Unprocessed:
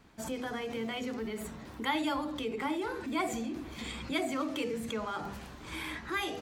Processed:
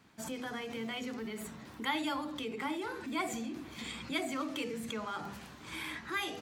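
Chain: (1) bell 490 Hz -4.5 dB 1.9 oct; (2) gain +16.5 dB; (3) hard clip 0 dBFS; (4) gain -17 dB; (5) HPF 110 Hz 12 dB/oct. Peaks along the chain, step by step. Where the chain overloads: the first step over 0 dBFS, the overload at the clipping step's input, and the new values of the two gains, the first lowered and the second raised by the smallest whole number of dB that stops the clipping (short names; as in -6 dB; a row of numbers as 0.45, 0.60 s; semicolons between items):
-19.0, -2.5, -2.5, -19.5, -19.5 dBFS; no overload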